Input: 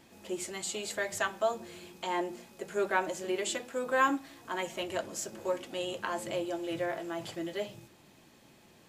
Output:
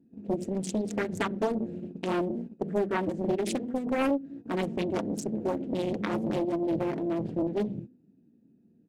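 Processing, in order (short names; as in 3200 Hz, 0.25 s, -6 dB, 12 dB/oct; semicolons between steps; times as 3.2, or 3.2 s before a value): Wiener smoothing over 41 samples; HPF 120 Hz 12 dB/oct; resonant low shelf 430 Hz +12.5 dB, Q 1.5; comb 4.3 ms, depth 36%; gate -41 dBFS, range -17 dB; compressor 5:1, threshold -28 dBFS, peak gain reduction 13.5 dB; de-hum 251.7 Hz, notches 3; Doppler distortion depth 0.67 ms; gain +4 dB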